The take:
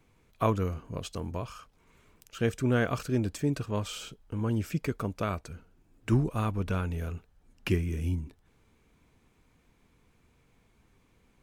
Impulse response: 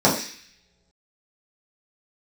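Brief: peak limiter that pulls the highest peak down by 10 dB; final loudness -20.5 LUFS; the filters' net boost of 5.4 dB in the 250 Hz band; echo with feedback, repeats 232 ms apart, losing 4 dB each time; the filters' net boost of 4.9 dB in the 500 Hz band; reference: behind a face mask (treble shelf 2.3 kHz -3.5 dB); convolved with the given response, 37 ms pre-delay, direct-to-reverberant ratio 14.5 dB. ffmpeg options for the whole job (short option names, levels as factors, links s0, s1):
-filter_complex "[0:a]equalizer=f=250:t=o:g=5.5,equalizer=f=500:t=o:g=4.5,alimiter=limit=0.133:level=0:latency=1,aecho=1:1:232|464|696|928|1160|1392|1624|1856|2088:0.631|0.398|0.25|0.158|0.0994|0.0626|0.0394|0.0249|0.0157,asplit=2[s0][s1];[1:a]atrim=start_sample=2205,adelay=37[s2];[s1][s2]afir=irnorm=-1:irlink=0,volume=0.0178[s3];[s0][s3]amix=inputs=2:normalize=0,highshelf=f=2300:g=-3.5,volume=2.51"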